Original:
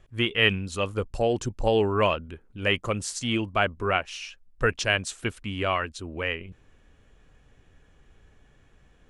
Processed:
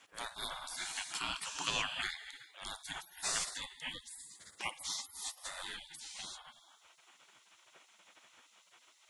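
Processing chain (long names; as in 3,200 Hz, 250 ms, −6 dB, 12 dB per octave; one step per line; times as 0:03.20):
reverb whose tail is shaped and stops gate 400 ms flat, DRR 8.5 dB
gate on every frequency bin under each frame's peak −30 dB weak
level +9.5 dB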